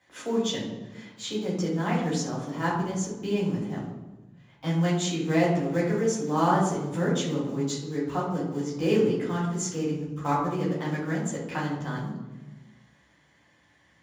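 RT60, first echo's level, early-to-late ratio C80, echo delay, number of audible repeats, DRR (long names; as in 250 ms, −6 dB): 1.2 s, no echo audible, 6.0 dB, no echo audible, no echo audible, −7.0 dB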